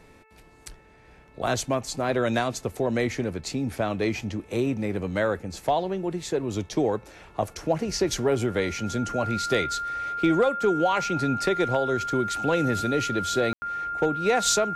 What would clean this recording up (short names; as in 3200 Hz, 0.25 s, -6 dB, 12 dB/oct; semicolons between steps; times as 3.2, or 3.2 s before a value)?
clip repair -13.5 dBFS; de-hum 438.7 Hz, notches 6; notch 1400 Hz, Q 30; room tone fill 13.53–13.62